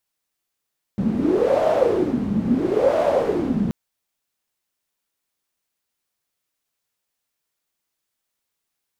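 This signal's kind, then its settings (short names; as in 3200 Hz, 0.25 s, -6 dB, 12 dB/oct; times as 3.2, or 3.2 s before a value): wind-like swept noise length 2.73 s, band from 200 Hz, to 620 Hz, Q 7.5, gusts 2, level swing 3 dB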